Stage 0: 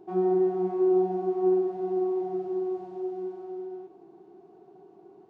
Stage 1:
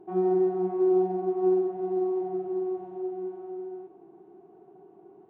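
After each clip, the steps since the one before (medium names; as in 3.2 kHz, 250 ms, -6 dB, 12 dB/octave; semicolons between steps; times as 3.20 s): local Wiener filter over 9 samples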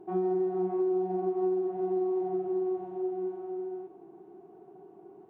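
compression, threshold -27 dBFS, peak gain reduction 7.5 dB; trim +1 dB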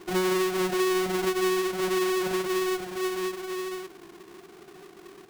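square wave that keeps the level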